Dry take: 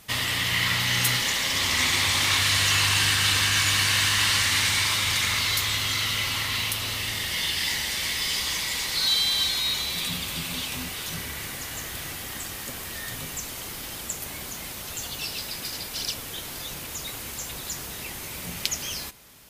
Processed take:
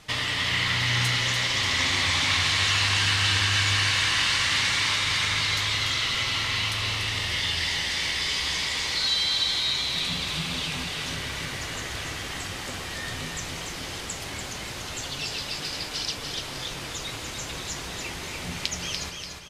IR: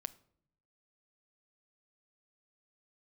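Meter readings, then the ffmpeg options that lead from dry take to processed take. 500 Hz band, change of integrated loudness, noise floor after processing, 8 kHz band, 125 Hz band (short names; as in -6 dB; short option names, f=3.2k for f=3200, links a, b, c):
+1.5 dB, -0.5 dB, -36 dBFS, -4.5 dB, +1.5 dB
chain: -filter_complex "[0:a]lowpass=6k,equalizer=f=220:w=7.6:g=-5.5,asplit=2[a][b];[b]acompressor=threshold=-31dB:ratio=6,volume=2dB[c];[a][c]amix=inputs=2:normalize=0,flanger=delay=6.6:depth=5.6:regen=77:speed=0.19:shape=sinusoidal,aecho=1:1:291|582|873|1164|1455:0.531|0.212|0.0849|0.034|0.0136"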